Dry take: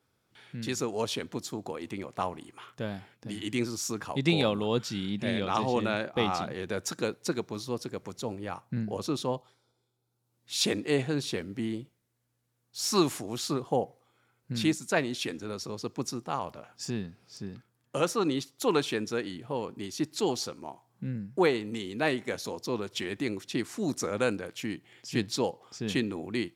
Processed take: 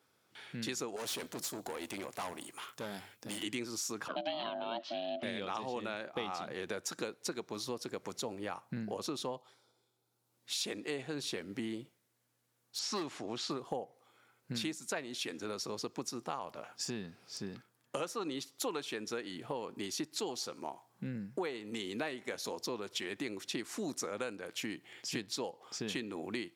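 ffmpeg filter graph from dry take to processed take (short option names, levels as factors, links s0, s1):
-filter_complex "[0:a]asettb=1/sr,asplit=3[s0][s1][s2];[s0]atrim=end=0.964[s3];[s1]atrim=start=0.96:end=3.43,asetpts=PTS-STARTPTS,afade=t=in:d=0.004:c=qsin,afade=t=out:st=2.466:d=0.004:c=qsin,aemphasis=mode=production:type=50kf,bandreject=f=50:t=h:w=6,bandreject=f=100:t=h:w=6,bandreject=f=150:t=h:w=6,aeval=exprs='(tanh(63.1*val(0)+0.55)-tanh(0.55))/63.1':c=same[s4];[s2]atrim=start=3.426[s5];[s3][s4]acrossfade=d=0.004:c1=hsin:c2=qsin[s6];[s6][s5]acrossfade=d=0.004:c1=qsin:c2=hsin,asettb=1/sr,asplit=3[s7][s8][s9];[s7]atrim=end=4.084[s10];[s8]atrim=start=4.08:end=5.23,asetpts=PTS-STARTPTS,afade=t=in:d=0.004:c=qsin,afade=t=out:st=1.146:d=0.004:c=qsin,aeval=exprs='val(0)*sin(2*PI*460*n/s)':c=same,highpass=f=180:w=0.5412,highpass=f=180:w=1.3066,equalizer=f=640:t=q:w=4:g=7,equalizer=f=920:t=q:w=4:g=-6,equalizer=f=2100:t=q:w=4:g=-7,equalizer=f=3000:t=q:w=4:g=5,lowpass=f=4300:w=0.5412,lowpass=f=4300:w=1.3066[s11];[s9]atrim=start=5.226[s12];[s10][s11]acrossfade=d=0.004:c1=hsin:c2=qsin[s13];[s13][s12]acrossfade=d=0.004:c1=qsin:c2=hsin,asettb=1/sr,asplit=3[s14][s15][s16];[s14]atrim=end=12.794[s17];[s15]atrim=start=12.79:end=13.51,asetpts=PTS-STARTPTS,afade=t=in:d=0.004:c=qsin,afade=t=out:st=0.716:d=0.004:c=qsin,lowpass=4500,asoftclip=type=hard:threshold=0.0944[s18];[s16]atrim=start=13.506[s19];[s17][s18]acrossfade=d=0.004:c1=hsin:c2=qsin[s20];[s20][s19]acrossfade=d=0.004:c1=qsin:c2=hsin,highpass=f=350:p=1,acompressor=threshold=0.0112:ratio=6,volume=1.5"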